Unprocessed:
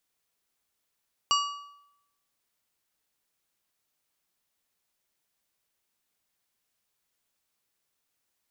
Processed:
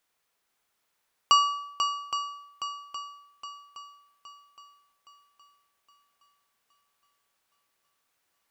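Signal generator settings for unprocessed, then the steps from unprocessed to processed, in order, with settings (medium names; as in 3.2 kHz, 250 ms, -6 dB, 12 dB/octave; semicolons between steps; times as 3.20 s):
metal hit plate, lowest mode 1.15 kHz, decay 0.83 s, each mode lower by 3 dB, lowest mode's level -21 dB
peaking EQ 1.1 kHz +7.5 dB 3 oct; de-hum 66.77 Hz, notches 14; on a send: shuffle delay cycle 817 ms, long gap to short 1.5:1, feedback 44%, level -7.5 dB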